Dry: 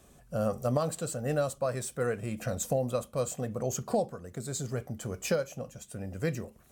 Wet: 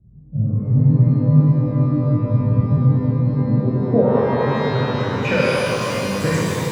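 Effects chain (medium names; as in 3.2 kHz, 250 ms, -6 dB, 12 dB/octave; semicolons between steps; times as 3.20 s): low-pass sweep 140 Hz -> 9.2 kHz, 3.14–6.32 s; pitch-shifted reverb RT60 3.6 s, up +12 st, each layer -8 dB, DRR -8.5 dB; trim +5 dB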